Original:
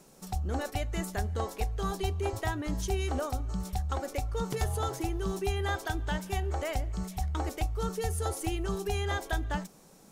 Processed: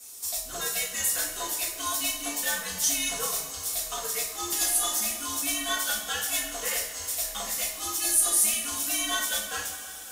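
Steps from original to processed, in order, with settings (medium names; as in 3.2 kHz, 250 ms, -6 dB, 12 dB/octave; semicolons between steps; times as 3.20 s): differentiator; two-slope reverb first 0.48 s, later 4.2 s, from -18 dB, DRR -9 dB; frequency shift -110 Hz; trim +8.5 dB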